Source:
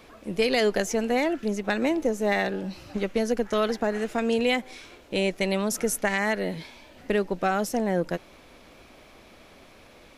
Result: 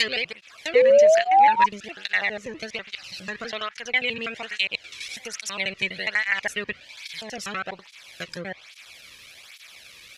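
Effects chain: slices played last to first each 82 ms, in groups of 8; low-pass that closes with the level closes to 2.1 kHz, closed at -20.5 dBFS; FFT filter 110 Hz 0 dB, 280 Hz -18 dB, 930 Hz -9 dB, 2.3 kHz +8 dB, 4.3 kHz +10 dB; painted sound rise, 0.75–1.66 s, 480–990 Hz -18 dBFS; cancelling through-zero flanger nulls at 1.2 Hz, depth 1.5 ms; trim +5 dB

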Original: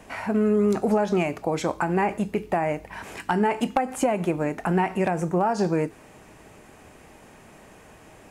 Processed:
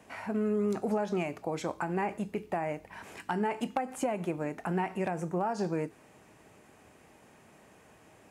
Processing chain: high-pass 76 Hz; trim -8.5 dB

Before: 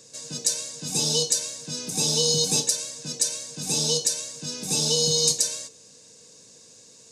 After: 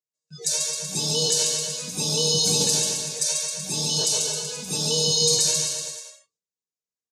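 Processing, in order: spectral replace 3.82–4.48 s, 360–1900 Hz both; transient shaper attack -1 dB, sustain +11 dB; spectral noise reduction 28 dB; gate with hold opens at -53 dBFS; comb of notches 260 Hz; bouncing-ball echo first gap 140 ms, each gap 0.9×, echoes 5

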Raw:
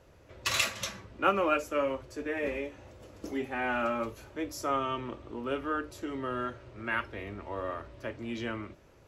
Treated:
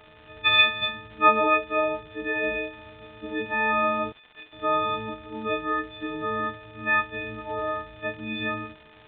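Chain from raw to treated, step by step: partials quantised in pitch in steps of 6 st; 4.12–4.53 s: differentiator; crackle 280 per s -38 dBFS; resampled via 8 kHz; trim +3 dB

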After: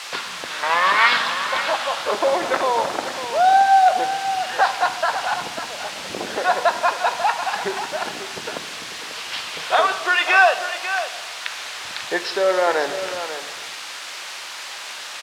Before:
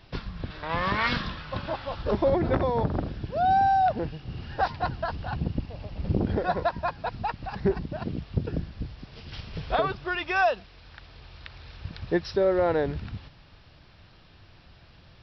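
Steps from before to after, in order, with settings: in parallel at +2 dB: compression, threshold -32 dBFS, peak gain reduction 13 dB; on the sum: word length cut 6-bit, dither triangular; band-pass 790–4900 Hz; delay 543 ms -10.5 dB; on a send at -9 dB: reverberation RT60 1.3 s, pre-delay 10 ms; on the sum: trim +8.5 dB

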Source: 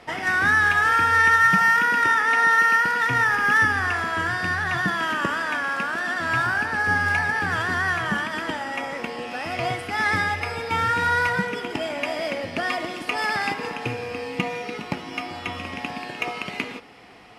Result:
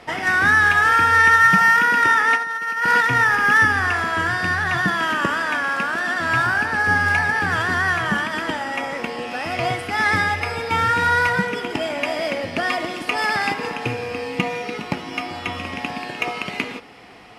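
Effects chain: 2.35–3.04 s: compressor with a negative ratio -23 dBFS, ratio -0.5; trim +3.5 dB

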